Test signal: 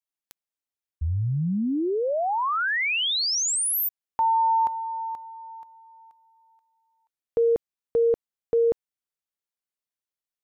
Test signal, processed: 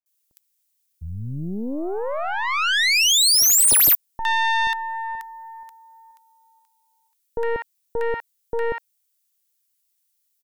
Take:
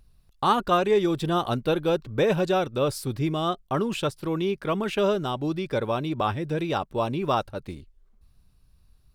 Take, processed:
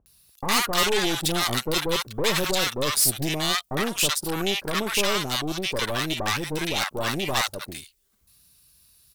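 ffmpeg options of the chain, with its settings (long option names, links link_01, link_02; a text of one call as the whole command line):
ffmpeg -i in.wav -filter_complex "[0:a]highpass=52,lowshelf=frequency=100:gain=-7.5,aeval=exprs='0.355*(cos(1*acos(clip(val(0)/0.355,-1,1)))-cos(1*PI/2))+0.0316*(cos(4*acos(clip(val(0)/0.355,-1,1)))-cos(4*PI/2))+0.0501*(cos(5*acos(clip(val(0)/0.355,-1,1)))-cos(5*PI/2))+0.0708*(cos(8*acos(clip(val(0)/0.355,-1,1)))-cos(8*PI/2))':channel_layout=same,crystalizer=i=10:c=0,asoftclip=type=tanh:threshold=-6.5dB,acrossover=split=890[link_01][link_02];[link_02]adelay=60[link_03];[link_01][link_03]amix=inputs=2:normalize=0,volume=-6.5dB" out.wav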